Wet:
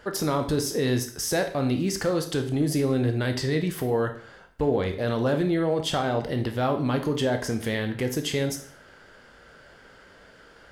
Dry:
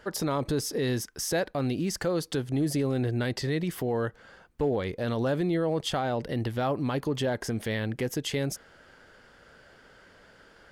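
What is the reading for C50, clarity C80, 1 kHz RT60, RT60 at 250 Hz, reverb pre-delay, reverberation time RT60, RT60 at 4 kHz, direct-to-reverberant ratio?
10.0 dB, 14.0 dB, 0.55 s, 0.50 s, 14 ms, 0.50 s, 0.50 s, 5.5 dB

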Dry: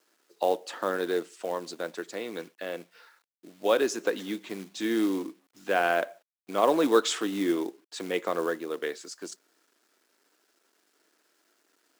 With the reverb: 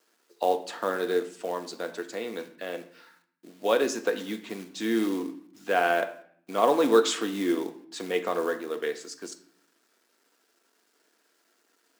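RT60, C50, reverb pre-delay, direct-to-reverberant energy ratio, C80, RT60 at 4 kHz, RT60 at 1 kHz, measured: 0.60 s, 13.0 dB, 4 ms, 7.0 dB, 16.5 dB, 0.50 s, 0.55 s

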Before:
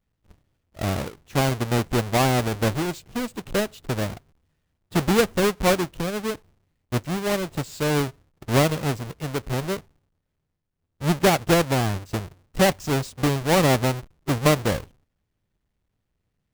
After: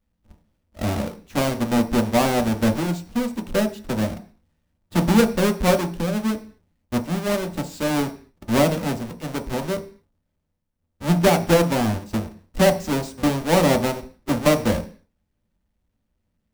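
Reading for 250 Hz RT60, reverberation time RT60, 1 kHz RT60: 0.45 s, 0.40 s, 0.40 s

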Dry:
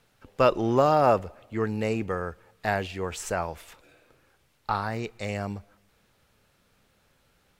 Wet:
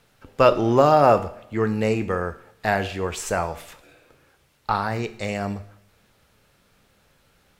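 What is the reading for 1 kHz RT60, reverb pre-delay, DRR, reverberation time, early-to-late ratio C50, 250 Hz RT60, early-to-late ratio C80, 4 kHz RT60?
0.60 s, 8 ms, 11.0 dB, 0.60 s, 15.5 dB, 0.60 s, 18.0 dB, 0.60 s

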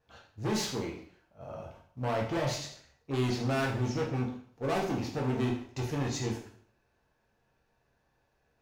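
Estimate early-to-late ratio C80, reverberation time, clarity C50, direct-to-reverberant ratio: 10.0 dB, 0.55 s, 6.5 dB, -2.0 dB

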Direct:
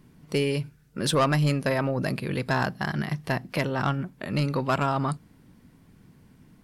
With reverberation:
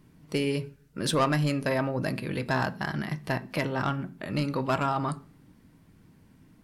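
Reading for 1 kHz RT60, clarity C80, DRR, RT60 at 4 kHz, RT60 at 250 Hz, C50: 0.35 s, 24.0 dB, 9.0 dB, 0.45 s, 0.70 s, 20.0 dB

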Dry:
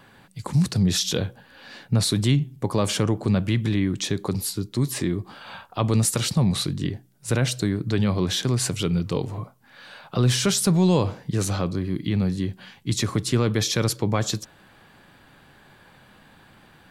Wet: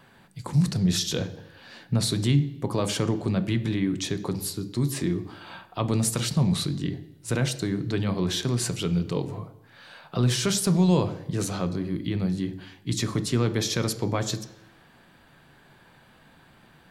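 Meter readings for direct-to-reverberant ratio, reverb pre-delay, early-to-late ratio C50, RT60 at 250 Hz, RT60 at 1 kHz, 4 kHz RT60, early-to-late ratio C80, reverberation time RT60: 9.0 dB, 3 ms, 14.5 dB, 0.85 s, 0.90 s, 0.90 s, 17.0 dB, 0.90 s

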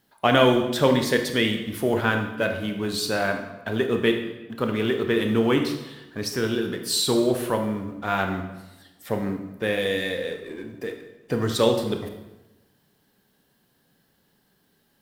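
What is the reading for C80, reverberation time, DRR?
9.0 dB, 1.0 s, 4.5 dB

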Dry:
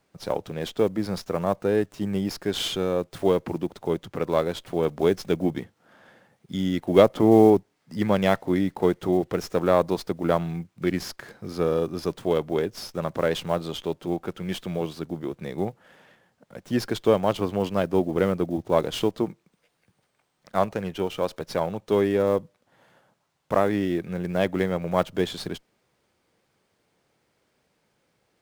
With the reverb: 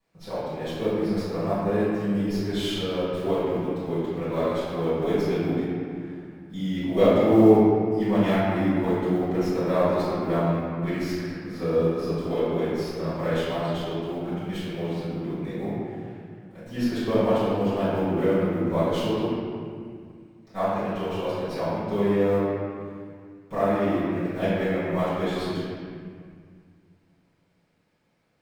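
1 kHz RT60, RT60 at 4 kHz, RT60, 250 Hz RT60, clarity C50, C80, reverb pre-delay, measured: 2.0 s, 1.5 s, 2.0 s, 2.8 s, -4.0 dB, -1.5 dB, 3 ms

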